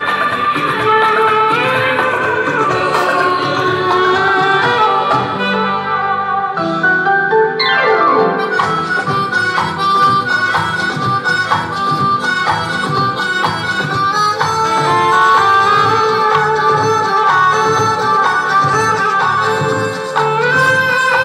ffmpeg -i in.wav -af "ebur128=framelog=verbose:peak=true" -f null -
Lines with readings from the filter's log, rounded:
Integrated loudness:
  I:         -12.6 LUFS
  Threshold: -22.6 LUFS
Loudness range:
  LRA:         3.0 LU
  Threshold: -32.6 LUFS
  LRA low:   -14.1 LUFS
  LRA high:  -11.1 LUFS
True peak:
  Peak:       -1.7 dBFS